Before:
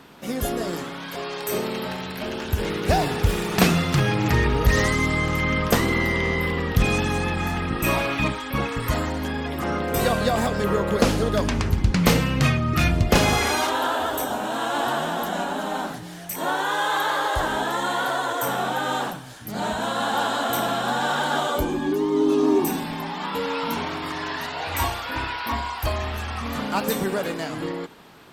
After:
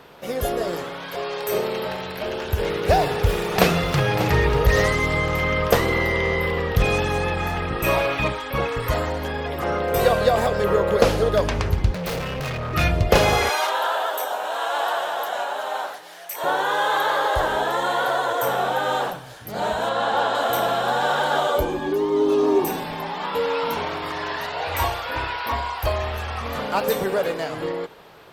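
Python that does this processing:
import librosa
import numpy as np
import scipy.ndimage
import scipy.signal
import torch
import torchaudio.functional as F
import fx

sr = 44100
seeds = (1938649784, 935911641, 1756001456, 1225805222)

y = fx.echo_throw(x, sr, start_s=2.96, length_s=1.06, ms=590, feedback_pct=55, wet_db=-11.0)
y = fx.overload_stage(y, sr, gain_db=26.0, at=(11.93, 12.74))
y = fx.highpass(y, sr, hz=650.0, slope=12, at=(13.49, 16.44))
y = fx.peak_eq(y, sr, hz=13000.0, db=-12.0, octaves=1.1, at=(19.89, 20.35))
y = fx.graphic_eq(y, sr, hz=(250, 500, 8000), db=(-9, 7, -5))
y = F.gain(torch.from_numpy(y), 1.0).numpy()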